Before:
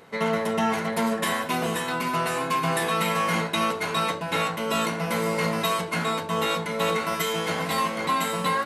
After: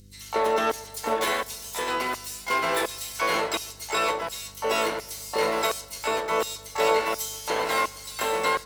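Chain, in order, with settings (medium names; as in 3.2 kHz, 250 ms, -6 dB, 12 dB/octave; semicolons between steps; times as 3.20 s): LFO high-pass square 1.4 Hz 400–5500 Hz; filtered feedback delay 131 ms, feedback 70%, low-pass 4 kHz, level -24 dB; hum 50 Hz, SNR 25 dB; harmony voices +5 st -9 dB, +12 st -4 dB; trim -3 dB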